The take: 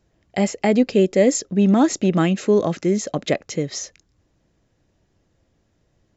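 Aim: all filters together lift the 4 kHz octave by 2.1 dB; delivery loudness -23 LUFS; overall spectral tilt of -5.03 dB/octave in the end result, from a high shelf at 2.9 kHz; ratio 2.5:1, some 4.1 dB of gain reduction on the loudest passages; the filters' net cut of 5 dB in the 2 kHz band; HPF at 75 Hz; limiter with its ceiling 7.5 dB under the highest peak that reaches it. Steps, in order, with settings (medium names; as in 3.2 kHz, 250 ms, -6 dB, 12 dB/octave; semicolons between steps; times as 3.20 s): high-pass 75 Hz; peaking EQ 2 kHz -6.5 dB; treble shelf 2.9 kHz -5 dB; peaking EQ 4 kHz +9 dB; compression 2.5:1, threshold -17 dBFS; trim +3 dB; peak limiter -12.5 dBFS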